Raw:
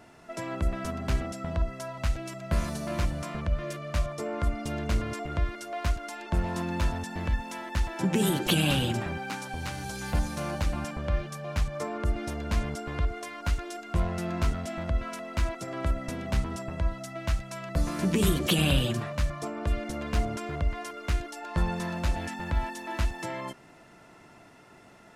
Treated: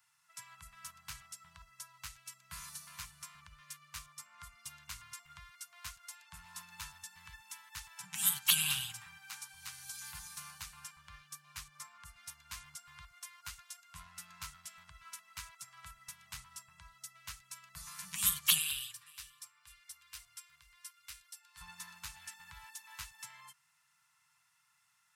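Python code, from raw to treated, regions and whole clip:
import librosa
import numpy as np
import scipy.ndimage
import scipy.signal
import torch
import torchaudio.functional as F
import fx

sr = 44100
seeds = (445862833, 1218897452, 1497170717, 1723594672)

y = fx.chain(x, sr, fx.tone_stack(knobs='10-0-10'),
    fx.notch(hz=6600.0, q=12.0),
    fx.echo_single(ms=482, db=-16.0), at=(18.58, 21.61))
y = scipy.signal.sosfilt(scipy.signal.cheby1(3, 1.0, [150.0, 1000.0], 'bandstop', fs=sr, output='sos'), y)
y = fx.riaa(y, sr, side='recording')
y = fx.upward_expand(y, sr, threshold_db=-45.0, expansion=1.5)
y = y * 10.0 ** (-5.5 / 20.0)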